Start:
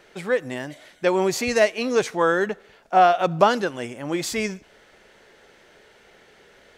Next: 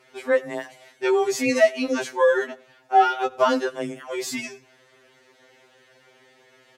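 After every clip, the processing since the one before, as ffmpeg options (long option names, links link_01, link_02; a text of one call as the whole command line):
ffmpeg -i in.wav -filter_complex "[0:a]asplit=2[link_01][link_02];[link_02]adelay=99.13,volume=-24dB,highshelf=frequency=4000:gain=-2.23[link_03];[link_01][link_03]amix=inputs=2:normalize=0,afreqshift=22,afftfilt=real='re*2.45*eq(mod(b,6),0)':imag='im*2.45*eq(mod(b,6),0)':win_size=2048:overlap=0.75" out.wav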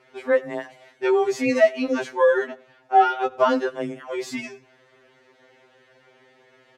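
ffmpeg -i in.wav -af "lowpass=frequency=2500:poles=1,volume=1dB" out.wav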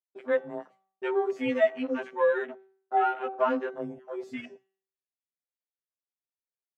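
ffmpeg -i in.wav -af "afwtdn=0.0224,agate=range=-33dB:threshold=-43dB:ratio=3:detection=peak,bandreject=frequency=192.2:width_type=h:width=4,bandreject=frequency=384.4:width_type=h:width=4,bandreject=frequency=576.6:width_type=h:width=4,bandreject=frequency=768.8:width_type=h:width=4,bandreject=frequency=961:width_type=h:width=4,bandreject=frequency=1153.2:width_type=h:width=4,bandreject=frequency=1345.4:width_type=h:width=4,bandreject=frequency=1537.6:width_type=h:width=4,bandreject=frequency=1729.8:width_type=h:width=4,bandreject=frequency=1922:width_type=h:width=4,bandreject=frequency=2114.2:width_type=h:width=4,bandreject=frequency=2306.4:width_type=h:width=4,bandreject=frequency=2498.6:width_type=h:width=4,bandreject=frequency=2690.8:width_type=h:width=4,bandreject=frequency=2883:width_type=h:width=4,bandreject=frequency=3075.2:width_type=h:width=4,bandreject=frequency=3267.4:width_type=h:width=4,bandreject=frequency=3459.6:width_type=h:width=4,bandreject=frequency=3651.8:width_type=h:width=4,bandreject=frequency=3844:width_type=h:width=4,bandreject=frequency=4036.2:width_type=h:width=4,bandreject=frequency=4228.4:width_type=h:width=4,bandreject=frequency=4420.6:width_type=h:width=4,bandreject=frequency=4612.8:width_type=h:width=4,bandreject=frequency=4805:width_type=h:width=4,bandreject=frequency=4997.2:width_type=h:width=4,bandreject=frequency=5189.4:width_type=h:width=4,bandreject=frequency=5381.6:width_type=h:width=4,bandreject=frequency=5573.8:width_type=h:width=4,bandreject=frequency=5766:width_type=h:width=4,bandreject=frequency=5958.2:width_type=h:width=4,bandreject=frequency=6150.4:width_type=h:width=4,bandreject=frequency=6342.6:width_type=h:width=4,bandreject=frequency=6534.8:width_type=h:width=4,bandreject=frequency=6727:width_type=h:width=4,bandreject=frequency=6919.2:width_type=h:width=4,bandreject=frequency=7111.4:width_type=h:width=4,volume=-6.5dB" out.wav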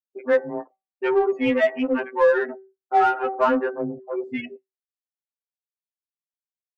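ffmpeg -i in.wav -filter_complex "[0:a]bandreject=frequency=670:width=12,afftdn=noise_reduction=34:noise_floor=-46,asplit=2[link_01][link_02];[link_02]asoftclip=type=tanh:threshold=-29.5dB,volume=-6dB[link_03];[link_01][link_03]amix=inputs=2:normalize=0,volume=5.5dB" out.wav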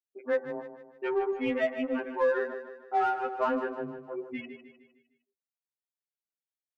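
ffmpeg -i in.wav -af "aecho=1:1:153|306|459|612|765:0.299|0.137|0.0632|0.0291|0.0134,volume=-9dB" out.wav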